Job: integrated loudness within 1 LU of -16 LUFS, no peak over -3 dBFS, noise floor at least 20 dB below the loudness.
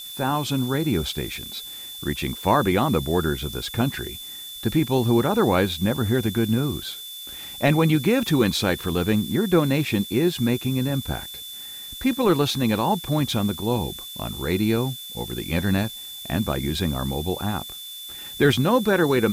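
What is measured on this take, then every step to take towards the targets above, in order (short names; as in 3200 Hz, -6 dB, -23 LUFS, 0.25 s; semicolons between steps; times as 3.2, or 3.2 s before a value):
steady tone 3500 Hz; tone level -36 dBFS; noise floor -37 dBFS; noise floor target -43 dBFS; loudness -23.0 LUFS; peak -7.0 dBFS; loudness target -16.0 LUFS
-> notch 3500 Hz, Q 30; denoiser 6 dB, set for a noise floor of -37 dBFS; gain +7 dB; limiter -3 dBFS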